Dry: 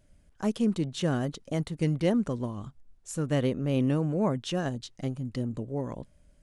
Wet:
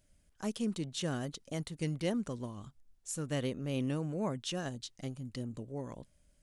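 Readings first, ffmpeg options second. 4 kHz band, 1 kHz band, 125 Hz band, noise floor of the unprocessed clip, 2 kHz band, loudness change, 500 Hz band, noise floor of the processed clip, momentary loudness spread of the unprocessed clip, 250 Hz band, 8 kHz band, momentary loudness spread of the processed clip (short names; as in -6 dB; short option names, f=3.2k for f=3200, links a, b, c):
-2.5 dB, -7.5 dB, -8.5 dB, -63 dBFS, -5.0 dB, -8.0 dB, -8.0 dB, -70 dBFS, 10 LU, -8.5 dB, 0.0 dB, 9 LU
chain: -af "highshelf=f=2.5k:g=9.5,volume=-8.5dB"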